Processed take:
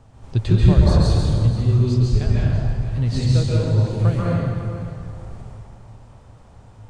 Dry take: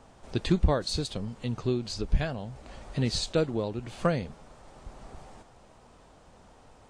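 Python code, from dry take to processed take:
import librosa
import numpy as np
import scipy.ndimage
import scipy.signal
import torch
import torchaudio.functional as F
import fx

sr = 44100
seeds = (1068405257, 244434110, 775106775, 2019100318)

p1 = fx.low_shelf(x, sr, hz=150.0, db=8.5)
p2 = fx.rider(p1, sr, range_db=10, speed_s=2.0)
p3 = fx.peak_eq(p2, sr, hz=110.0, db=13.5, octaves=0.58)
p4 = p3 + fx.echo_single(p3, sr, ms=491, db=-14.0, dry=0)
p5 = fx.rev_plate(p4, sr, seeds[0], rt60_s=2.1, hf_ratio=0.65, predelay_ms=120, drr_db=-6.5)
y = p5 * librosa.db_to_amplitude(-5.0)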